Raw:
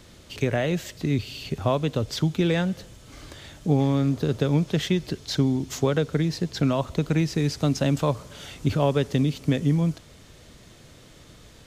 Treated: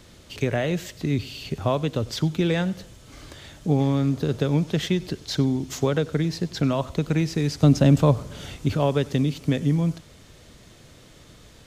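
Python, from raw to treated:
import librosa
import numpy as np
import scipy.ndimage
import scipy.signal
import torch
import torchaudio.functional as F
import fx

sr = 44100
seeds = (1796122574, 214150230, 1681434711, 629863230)

y = fx.low_shelf(x, sr, hz=480.0, db=8.5, at=(7.63, 8.56))
y = y + 10.0 ** (-21.0 / 20.0) * np.pad(y, (int(95 * sr / 1000.0), 0))[:len(y)]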